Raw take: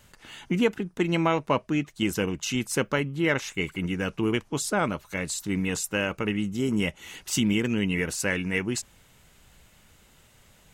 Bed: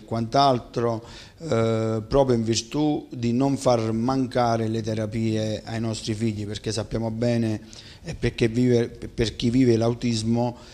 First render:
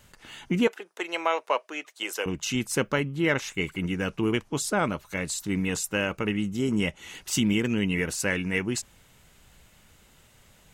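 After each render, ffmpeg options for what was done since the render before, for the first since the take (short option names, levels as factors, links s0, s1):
-filter_complex "[0:a]asettb=1/sr,asplit=3[s0][s1][s2];[s0]atrim=end=0.674[s3];[s1]atrim=start=0.67:end=2.26,asetpts=PTS-STARTPTS,afade=t=in:d=0.004:c=qsin,afade=t=out:st=1.586:d=0.004:c=qsin,highpass=f=470:w=0.5412,highpass=f=470:w=1.3066[s4];[s2]atrim=start=2.256[s5];[s3][s4]acrossfade=d=0.004:c1=hsin:c2=qsin[s6];[s6][s5]acrossfade=d=0.004:c1=qsin:c2=hsin,asettb=1/sr,asplit=3[s7][s8][s9];[s7]atrim=end=6.594[s10];[s8]atrim=start=6.59:end=7.15,asetpts=PTS-STARTPTS,afade=t=in:d=0.004:c=qsin,afade=t=out:st=0.556:d=0.004:c=qsin,lowpass=11000[s11];[s9]atrim=start=7.146[s12];[s10][s11]acrossfade=d=0.004:c1=hsin:c2=qsin[s13];[s13][s12]acrossfade=d=0.004:c1=qsin:c2=hsin"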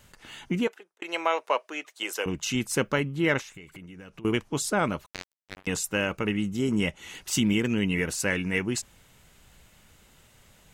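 -filter_complex "[0:a]asettb=1/sr,asplit=3[s0][s1][s2];[s0]atrim=end=3.414[s3];[s1]atrim=start=3.41:end=4.25,asetpts=PTS-STARTPTS,afade=t=in:d=0.004:c=qsin,afade=t=out:st=0.836:d=0.004:c=qsin,acompressor=threshold=0.00891:ratio=12:attack=3.2:release=140:knee=1:detection=peak[s4];[s2]atrim=start=4.246[s5];[s3][s4]acrossfade=d=0.004:c1=hsin:c2=qsin[s6];[s6][s5]acrossfade=d=0.004:c1=qsin:c2=hsin,asettb=1/sr,asplit=3[s7][s8][s9];[s7]atrim=end=5.064[s10];[s8]atrim=start=5.06:end=5.67,asetpts=PTS-STARTPTS,afade=t=in:d=0.004:c=qsin,afade=t=out:st=0.606:d=0.004:c=qsin,acrusher=bits=2:mix=0:aa=0.5[s11];[s9]atrim=start=5.666[s12];[s10][s11]acrossfade=d=0.004:c1=hsin:c2=qsin[s13];[s13][s12]acrossfade=d=0.004:c1=qsin:c2=hsin,asplit=2[s14][s15];[s14]atrim=end=1.02,asetpts=PTS-STARTPTS,afade=t=out:st=0.42:d=0.6[s16];[s15]atrim=start=1.02,asetpts=PTS-STARTPTS,afade=t=in:d=0.004:c=hsin[s17];[s16][s17]concat=n=2:v=0:a=1"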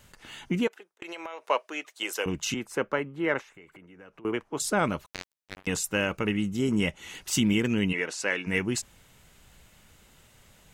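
-filter_complex "[0:a]asplit=3[s0][s1][s2];[s0]afade=t=out:st=0.67:d=0.02[s3];[s1]acompressor=threshold=0.02:ratio=12:attack=3.2:release=140:knee=1:detection=peak,afade=t=in:st=0.67:d=0.02,afade=t=out:st=1.44:d=0.02[s4];[s2]afade=t=in:st=1.44:d=0.02[s5];[s3][s4][s5]amix=inputs=3:normalize=0,asettb=1/sr,asplit=3[s6][s7][s8];[s6]atrim=end=2.544[s9];[s7]atrim=start=2.54:end=4.6,asetpts=PTS-STARTPTS,afade=t=in:d=0.004:c=qsin,afade=t=out:st=2.056:d=0.004:c=qsin,acrossover=split=310 2100:gain=0.251 1 0.224[s10][s11][s12];[s10][s11][s12]amix=inputs=3:normalize=0[s13];[s8]atrim=start=4.596[s14];[s9][s13]acrossfade=d=0.004:c1=hsin:c2=qsin[s15];[s15][s14]acrossfade=d=0.004:c1=qsin:c2=hsin,asplit=3[s16][s17][s18];[s16]afade=t=out:st=7.92:d=0.02[s19];[s17]highpass=380,lowpass=6100,afade=t=in:st=7.92:d=0.02,afade=t=out:st=8.46:d=0.02[s20];[s18]afade=t=in:st=8.46:d=0.02[s21];[s19][s20][s21]amix=inputs=3:normalize=0"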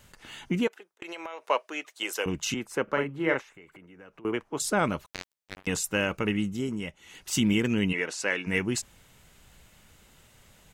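-filter_complex "[0:a]asplit=3[s0][s1][s2];[s0]afade=t=out:st=2.87:d=0.02[s3];[s1]asplit=2[s4][s5];[s5]adelay=43,volume=0.631[s6];[s4][s6]amix=inputs=2:normalize=0,afade=t=in:st=2.87:d=0.02,afade=t=out:st=3.34:d=0.02[s7];[s2]afade=t=in:st=3.34:d=0.02[s8];[s3][s7][s8]amix=inputs=3:normalize=0,asplit=3[s9][s10][s11];[s9]atrim=end=6.79,asetpts=PTS-STARTPTS,afade=t=out:st=6.41:d=0.38:silence=0.354813[s12];[s10]atrim=start=6.79:end=7.06,asetpts=PTS-STARTPTS,volume=0.355[s13];[s11]atrim=start=7.06,asetpts=PTS-STARTPTS,afade=t=in:d=0.38:silence=0.354813[s14];[s12][s13][s14]concat=n=3:v=0:a=1"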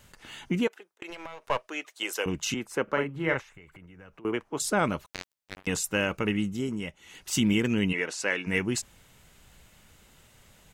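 -filter_complex "[0:a]asettb=1/sr,asplit=3[s0][s1][s2];[s0]atrim=end=1.104[s3];[s1]atrim=start=1.1:end=1.69,asetpts=PTS-STARTPTS,afade=t=in:d=0.004:c=qsin,afade=t=out:st=0.586:d=0.004:c=qsin,aeval=exprs='if(lt(val(0),0),0.447*val(0),val(0))':c=same[s4];[s2]atrim=start=1.686[s5];[s3][s4]acrossfade=d=0.004:c1=hsin:c2=qsin[s6];[s6][s5]acrossfade=d=0.004:c1=qsin:c2=hsin,asplit=3[s7][s8][s9];[s7]afade=t=out:st=3.15:d=0.02[s10];[s8]asubboost=boost=6.5:cutoff=120,afade=t=in:st=3.15:d=0.02,afade=t=out:st=4.14:d=0.02[s11];[s9]afade=t=in:st=4.14:d=0.02[s12];[s10][s11][s12]amix=inputs=3:normalize=0"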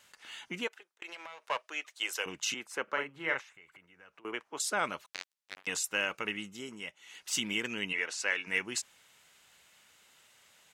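-af "highpass=f=1400:p=1,highshelf=f=11000:g=-9.5"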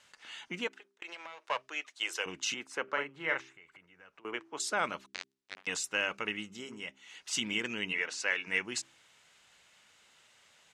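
-af "lowpass=7800,bandreject=f=66.17:t=h:w=4,bandreject=f=132.34:t=h:w=4,bandreject=f=198.51:t=h:w=4,bandreject=f=264.68:t=h:w=4,bandreject=f=330.85:t=h:w=4,bandreject=f=397.02:t=h:w=4"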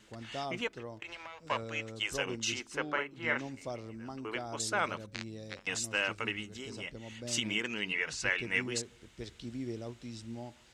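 -filter_complex "[1:a]volume=0.0944[s0];[0:a][s0]amix=inputs=2:normalize=0"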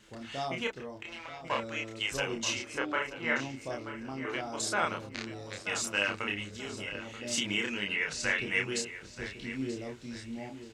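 -filter_complex "[0:a]asplit=2[s0][s1];[s1]adelay=30,volume=0.75[s2];[s0][s2]amix=inputs=2:normalize=0,asplit=2[s3][s4];[s4]adelay=932,lowpass=f=4800:p=1,volume=0.251,asplit=2[s5][s6];[s6]adelay=932,lowpass=f=4800:p=1,volume=0.35,asplit=2[s7][s8];[s8]adelay=932,lowpass=f=4800:p=1,volume=0.35,asplit=2[s9][s10];[s10]adelay=932,lowpass=f=4800:p=1,volume=0.35[s11];[s3][s5][s7][s9][s11]amix=inputs=5:normalize=0"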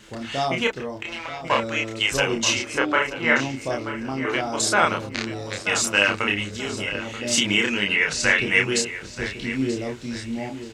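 -af "volume=3.55"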